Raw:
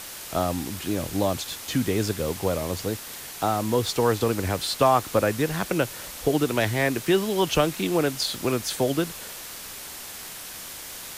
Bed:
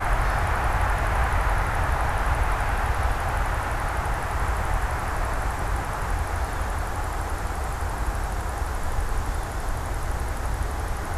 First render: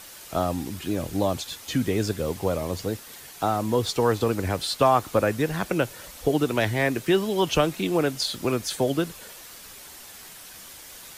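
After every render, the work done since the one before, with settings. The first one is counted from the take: noise reduction 7 dB, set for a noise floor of -39 dBFS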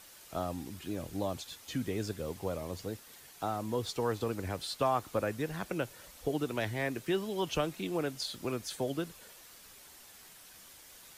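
trim -10.5 dB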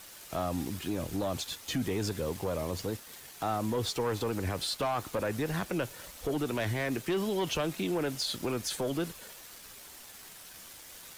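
waveshaping leveller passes 2; peak limiter -24.5 dBFS, peak gain reduction 6 dB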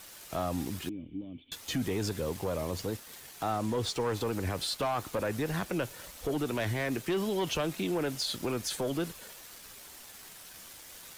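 0.89–1.52 s: cascade formant filter i; 3.52–4.15 s: peaking EQ 13 kHz -9 dB 0.31 oct

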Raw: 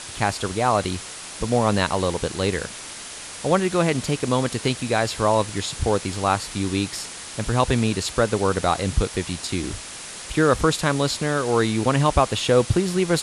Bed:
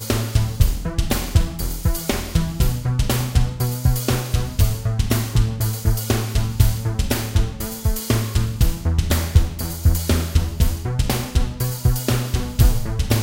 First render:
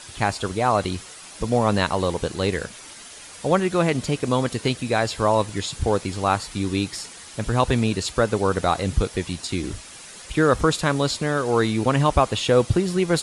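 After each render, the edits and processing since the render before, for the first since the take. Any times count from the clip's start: noise reduction 8 dB, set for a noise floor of -37 dBFS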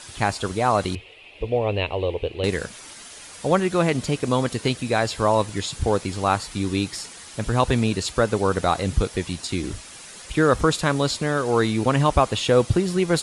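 0.95–2.44 s: FFT filter 100 Hz 0 dB, 180 Hz -15 dB, 440 Hz +2 dB, 720 Hz -4 dB, 1.5 kHz -17 dB, 2.6 kHz +7 dB, 6 kHz -27 dB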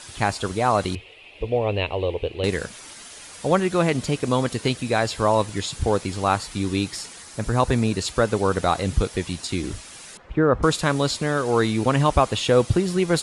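7.22–7.97 s: peaking EQ 3.1 kHz -6 dB 0.61 oct; 10.17–10.63 s: low-pass 1.3 kHz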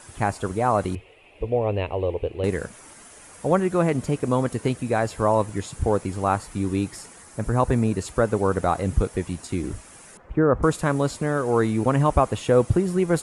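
peaking EQ 4 kHz -14 dB 1.5 oct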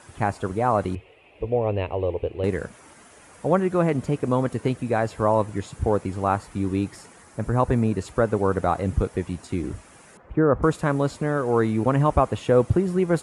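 high-pass 48 Hz; treble shelf 4.7 kHz -9 dB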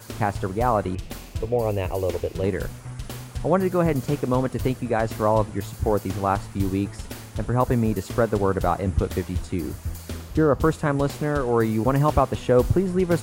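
add bed -15 dB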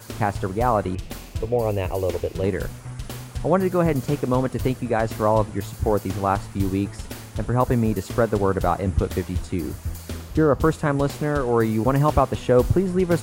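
trim +1 dB

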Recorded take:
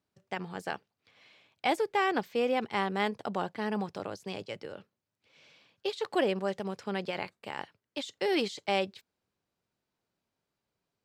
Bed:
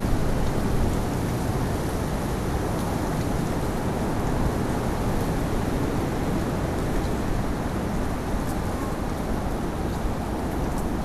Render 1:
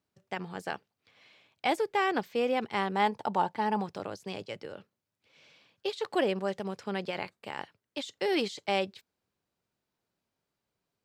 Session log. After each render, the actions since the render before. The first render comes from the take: 2.95–3.82 s: peaking EQ 890 Hz +13.5 dB 0.25 oct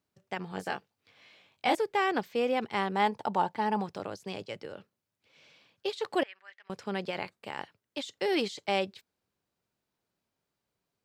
0.50–1.75 s: doubling 21 ms -3.5 dB; 6.23–6.70 s: ladder band-pass 2.1 kHz, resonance 55%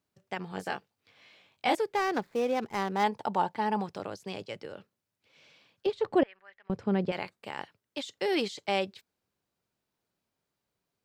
1.95–3.04 s: median filter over 15 samples; 5.86–7.12 s: tilt EQ -4 dB/octave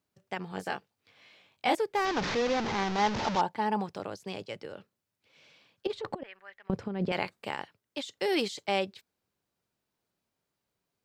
2.05–3.41 s: one-bit delta coder 32 kbps, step -26 dBFS; 5.87–7.56 s: compressor with a negative ratio -30 dBFS, ratio -0.5; 8.20–8.63 s: treble shelf 6.5 kHz +6 dB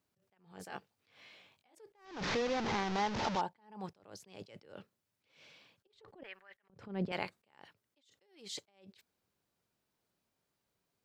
compression 3:1, threshold -32 dBFS, peak gain reduction 8.5 dB; attacks held to a fixed rise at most 120 dB/s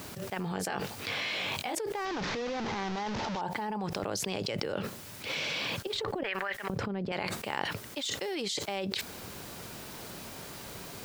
peak limiter -29.5 dBFS, peak gain reduction 10.5 dB; level flattener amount 100%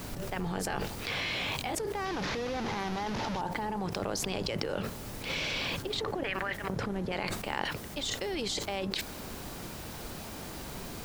add bed -19 dB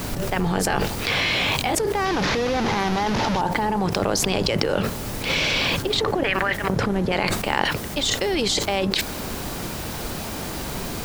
trim +11.5 dB; peak limiter -2 dBFS, peak gain reduction 1 dB

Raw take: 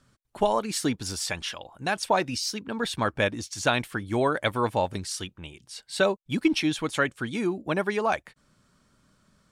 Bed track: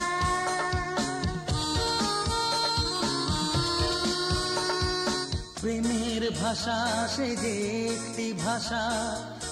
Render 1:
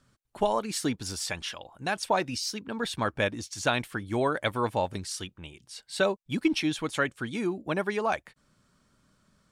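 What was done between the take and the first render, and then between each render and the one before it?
trim -2.5 dB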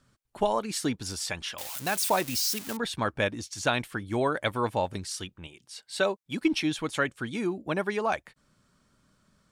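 1.58–2.77 s: zero-crossing glitches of -24 dBFS; 5.47–6.41 s: high-pass 240 Hz 6 dB/octave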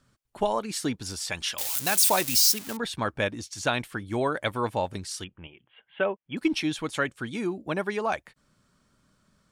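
1.32–2.52 s: treble shelf 3 kHz +9.5 dB; 5.24–6.37 s: Chebyshev low-pass 3.3 kHz, order 8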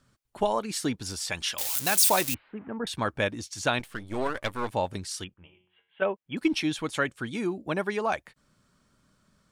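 2.34–2.87 s: Gaussian low-pass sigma 5.5 samples; 3.79–4.72 s: partial rectifier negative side -12 dB; 5.34–6.02 s: feedback comb 91 Hz, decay 0.58 s, mix 80%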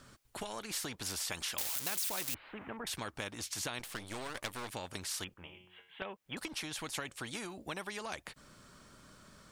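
compression, threshold -31 dBFS, peak gain reduction 14 dB; spectrum-flattening compressor 2:1

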